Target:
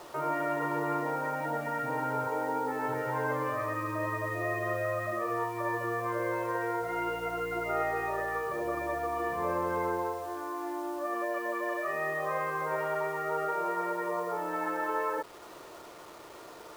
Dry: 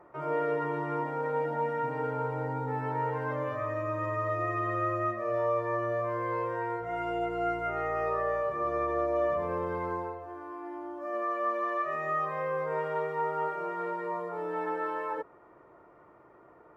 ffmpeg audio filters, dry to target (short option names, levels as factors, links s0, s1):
-filter_complex "[0:a]afftfilt=real='re*lt(hypot(re,im),0.158)':imag='im*lt(hypot(re,im),0.158)':win_size=1024:overlap=0.75,bass=f=250:g=-7,treble=f=4000:g=-12,asplit=2[s0][s1];[s1]acompressor=threshold=0.00447:ratio=12,volume=0.891[s2];[s0][s2]amix=inputs=2:normalize=0,acrusher=bits=8:mix=0:aa=0.000001,volume=1.41"